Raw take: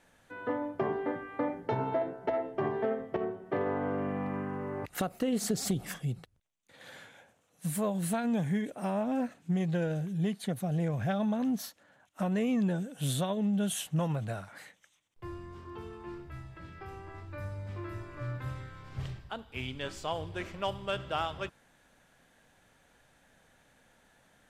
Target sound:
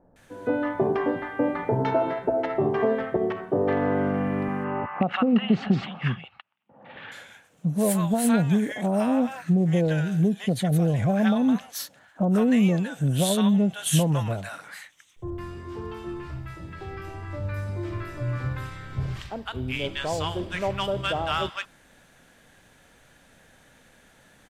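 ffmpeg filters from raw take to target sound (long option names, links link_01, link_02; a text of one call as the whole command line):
ffmpeg -i in.wav -filter_complex "[0:a]asettb=1/sr,asplit=3[link_01][link_02][link_03];[link_01]atrim=end=4.484[link_04];[link_02]atrim=start=4.48:end=6.96,asetpts=PTS-STARTPTS,afade=type=in:duration=0.004:curve=qsin,afade=type=out:start_time=2.476:duration=0.004:curve=qsin,highpass=130,equalizer=frequency=220:width_type=q:width=4:gain=5,equalizer=frequency=310:width_type=q:width=4:gain=-5,equalizer=frequency=450:width_type=q:width=4:gain=-6,equalizer=frequency=850:width_type=q:width=4:gain=8,equalizer=frequency=1200:width_type=q:width=4:gain=6,equalizer=frequency=2800:width_type=q:width=4:gain=8,lowpass=frequency=2900:width=0.5412,lowpass=frequency=2900:width=1.3066[link_05];[link_03]atrim=start=6.956[link_06];[link_04][link_05]acrossfade=duration=0.004:curve1=hsin:curve2=qsin[link_07];[link_07][link_06]acrossfade=duration=0.004:curve1=qsin:curve2=hsin,acrossover=split=870[link_08][link_09];[link_09]adelay=160[link_10];[link_08][link_10]amix=inputs=2:normalize=0,volume=9dB" out.wav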